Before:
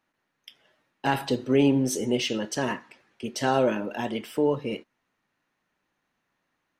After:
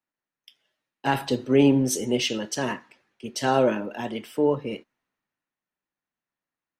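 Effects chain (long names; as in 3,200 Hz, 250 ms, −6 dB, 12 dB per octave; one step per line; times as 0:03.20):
multiband upward and downward expander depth 40%
level +1 dB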